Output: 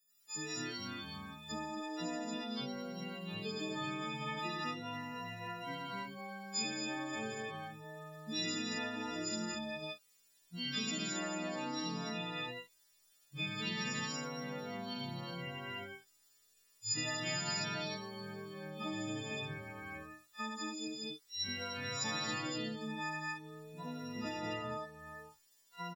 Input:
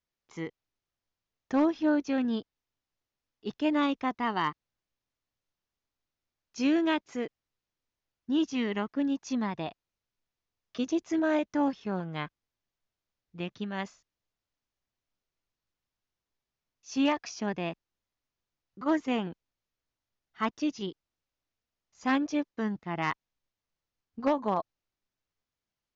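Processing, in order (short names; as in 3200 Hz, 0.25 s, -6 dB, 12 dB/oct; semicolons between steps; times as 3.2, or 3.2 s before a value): frequency quantiser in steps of 6 st; chorus voices 6, 0.12 Hz, delay 18 ms, depth 4.5 ms; loudspeakers at several distances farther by 25 m -3 dB, 57 m -6 dB, 79 m -1 dB; compressor 6:1, threshold -38 dBFS, peak gain reduction 17 dB; high shelf 3600 Hz +11 dB; echoes that change speed 99 ms, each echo -4 st, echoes 3; gain -3 dB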